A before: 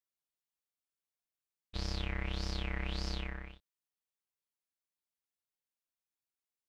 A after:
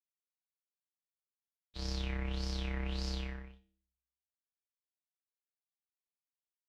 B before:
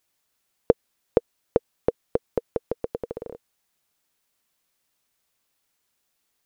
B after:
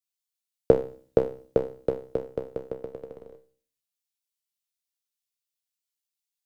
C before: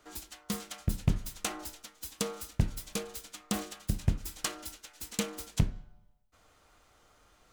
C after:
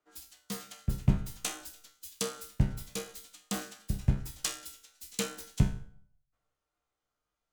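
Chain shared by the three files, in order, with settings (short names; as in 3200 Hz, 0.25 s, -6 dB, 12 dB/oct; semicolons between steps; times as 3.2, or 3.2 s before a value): resonator 65 Hz, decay 0.53 s, harmonics all, mix 80%; shoebox room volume 740 m³, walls furnished, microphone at 0.39 m; three-band expander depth 70%; gain +5 dB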